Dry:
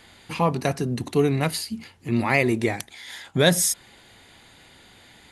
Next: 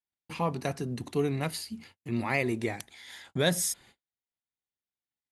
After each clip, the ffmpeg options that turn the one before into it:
-af "agate=range=-44dB:threshold=-45dB:ratio=16:detection=peak,volume=-8dB"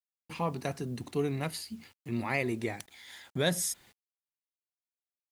-af "acrusher=bits=9:mix=0:aa=0.000001,volume=-2.5dB"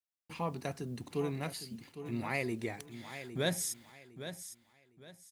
-af "aecho=1:1:808|1616|2424:0.282|0.0789|0.0221,volume=-4dB"

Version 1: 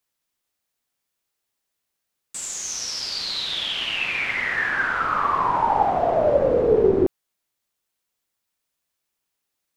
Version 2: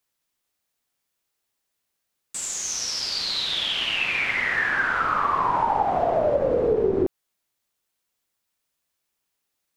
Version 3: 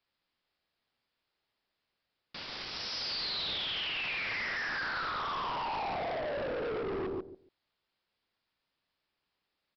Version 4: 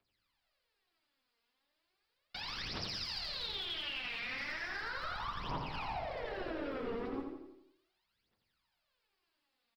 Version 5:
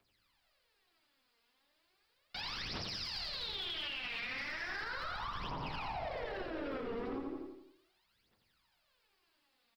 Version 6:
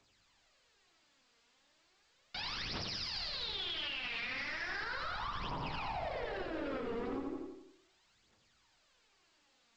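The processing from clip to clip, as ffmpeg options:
-af "acompressor=threshold=-19dB:ratio=5,volume=1dB"
-filter_complex "[0:a]alimiter=limit=-22dB:level=0:latency=1:release=15,asplit=2[a][b];[b]adelay=141,lowpass=f=1.8k:p=1,volume=-6dB,asplit=2[c][d];[d]adelay=141,lowpass=f=1.8k:p=1,volume=0.18,asplit=2[e][f];[f]adelay=141,lowpass=f=1.8k:p=1,volume=0.18[g];[a][c][e][g]amix=inputs=4:normalize=0,aresample=11025,volume=33.5dB,asoftclip=hard,volume=-33.5dB,aresample=44100"
-filter_complex "[0:a]aphaser=in_gain=1:out_gain=1:delay=4.4:decay=0.79:speed=0.36:type=triangular,acrossover=split=230[a][b];[b]acompressor=threshold=-36dB:ratio=6[c];[a][c]amix=inputs=2:normalize=0,aecho=1:1:85|170|255|340|425|510:0.501|0.251|0.125|0.0626|0.0313|0.0157,volume=-3.5dB"
-af "alimiter=level_in=14dB:limit=-24dB:level=0:latency=1:release=135,volume=-14dB,volume=6dB"
-af "volume=1dB" -ar 16000 -c:a pcm_alaw

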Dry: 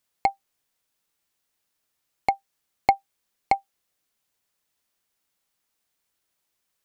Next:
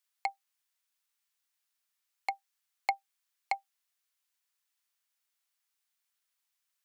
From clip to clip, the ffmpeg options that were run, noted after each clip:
-af "highpass=1.1k,volume=-5dB"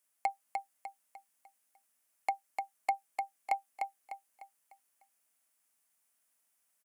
-filter_complex "[0:a]equalizer=f=250:t=o:w=0.67:g=12,equalizer=f=630:t=o:w=0.67:g=8,equalizer=f=4k:t=o:w=0.67:g=-8,equalizer=f=10k:t=o:w=0.67:g=8,alimiter=limit=-21dB:level=0:latency=1:release=56,asplit=2[a][b];[b]aecho=0:1:300|600|900|1200|1500:0.596|0.232|0.0906|0.0353|0.0138[c];[a][c]amix=inputs=2:normalize=0,volume=2dB"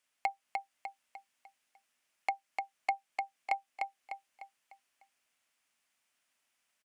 -filter_complex "[0:a]firequalizer=gain_entry='entry(780,0);entry(2700,6);entry(11000,-12)':delay=0.05:min_phase=1,asplit=2[a][b];[b]acompressor=threshold=-40dB:ratio=6,volume=-3dB[c];[a][c]amix=inputs=2:normalize=0,volume=-2.5dB"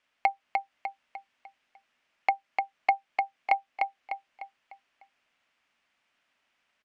-af "lowpass=3.4k,volume=8dB"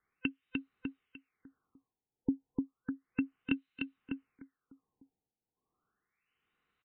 -filter_complex "[0:a]afftfilt=real='real(if(lt(b,1008),b+24*(1-2*mod(floor(b/24),2)),b),0)':imag='imag(if(lt(b,1008),b+24*(1-2*mod(floor(b/24),2)),b),0)':win_size=2048:overlap=0.75,acrossover=split=2100[a][b];[a]aeval=exprs='val(0)*(1-0.7/2+0.7/2*cos(2*PI*1.2*n/s))':c=same[c];[b]aeval=exprs='val(0)*(1-0.7/2-0.7/2*cos(2*PI*1.2*n/s))':c=same[d];[c][d]amix=inputs=2:normalize=0,afftfilt=real='re*lt(b*sr/1024,920*pow(4300/920,0.5+0.5*sin(2*PI*0.33*pts/sr)))':imag='im*lt(b*sr/1024,920*pow(4300/920,0.5+0.5*sin(2*PI*0.33*pts/sr)))':win_size=1024:overlap=0.75,volume=-3dB"

